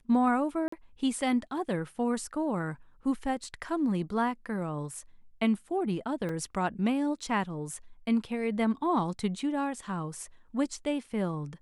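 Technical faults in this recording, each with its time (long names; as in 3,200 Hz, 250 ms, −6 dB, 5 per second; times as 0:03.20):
0:00.68–0:00.72: drop-out 44 ms
0:06.29: drop-out 3.4 ms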